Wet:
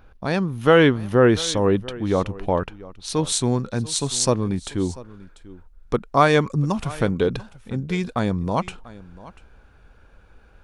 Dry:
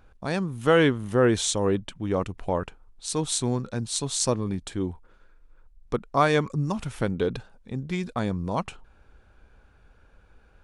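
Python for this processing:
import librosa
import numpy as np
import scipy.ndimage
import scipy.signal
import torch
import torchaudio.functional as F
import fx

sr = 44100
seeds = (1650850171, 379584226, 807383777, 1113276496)

y = fx.peak_eq(x, sr, hz=7900.0, db=fx.steps((0.0, -12.0), (3.27, -2.0)), octaves=0.49)
y = y + 10.0 ** (-19.5 / 20.0) * np.pad(y, (int(691 * sr / 1000.0), 0))[:len(y)]
y = y * librosa.db_to_amplitude(5.0)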